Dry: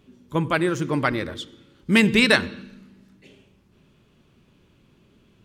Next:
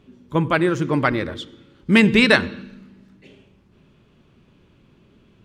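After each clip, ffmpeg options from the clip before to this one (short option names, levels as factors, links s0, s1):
-af "lowpass=f=3600:p=1,volume=1.5"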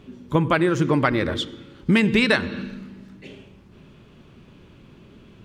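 -af "acompressor=threshold=0.0708:ratio=4,volume=2.11"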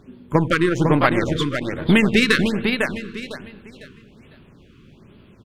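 -filter_complex "[0:a]aeval=exprs='0.531*(cos(1*acos(clip(val(0)/0.531,-1,1)))-cos(1*PI/2))+0.0376*(cos(3*acos(clip(val(0)/0.531,-1,1)))-cos(3*PI/2))+0.0266*(cos(6*acos(clip(val(0)/0.531,-1,1)))-cos(6*PI/2))+0.0188*(cos(7*acos(clip(val(0)/0.531,-1,1)))-cos(7*PI/2))':c=same,asplit=2[s0][s1];[s1]aecho=0:1:502|1004|1506|2008:0.562|0.163|0.0473|0.0137[s2];[s0][s2]amix=inputs=2:normalize=0,afftfilt=real='re*(1-between(b*sr/1024,660*pow(7200/660,0.5+0.5*sin(2*PI*1.2*pts/sr))/1.41,660*pow(7200/660,0.5+0.5*sin(2*PI*1.2*pts/sr))*1.41))':imag='im*(1-between(b*sr/1024,660*pow(7200/660,0.5+0.5*sin(2*PI*1.2*pts/sr))/1.41,660*pow(7200/660,0.5+0.5*sin(2*PI*1.2*pts/sr))*1.41))':win_size=1024:overlap=0.75,volume=1.58"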